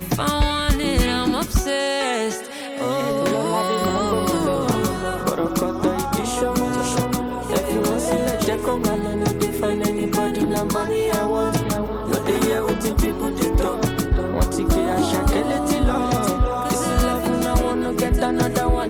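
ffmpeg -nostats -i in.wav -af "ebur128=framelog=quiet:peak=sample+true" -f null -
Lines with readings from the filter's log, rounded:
Integrated loudness:
  I:         -21.2 LUFS
  Threshold: -31.2 LUFS
Loudness range:
  LRA:         1.2 LU
  Threshold: -41.3 LUFS
  LRA low:   -21.7 LUFS
  LRA high:  -20.5 LUFS
Sample peak:
  Peak:       -8.5 dBFS
True peak:
  Peak:       -8.5 dBFS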